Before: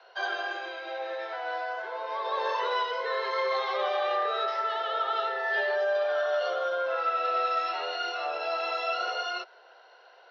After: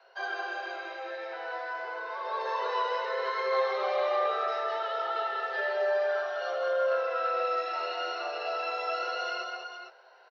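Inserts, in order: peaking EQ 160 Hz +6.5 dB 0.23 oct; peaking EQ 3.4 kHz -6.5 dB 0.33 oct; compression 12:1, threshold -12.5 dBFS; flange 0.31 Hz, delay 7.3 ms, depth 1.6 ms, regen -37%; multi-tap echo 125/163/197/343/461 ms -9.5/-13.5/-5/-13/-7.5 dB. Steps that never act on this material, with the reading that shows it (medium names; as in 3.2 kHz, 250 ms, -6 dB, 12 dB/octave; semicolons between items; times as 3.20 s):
peaking EQ 160 Hz: input has nothing below 340 Hz; compression, threshold -12.5 dBFS: peak at its input -17.0 dBFS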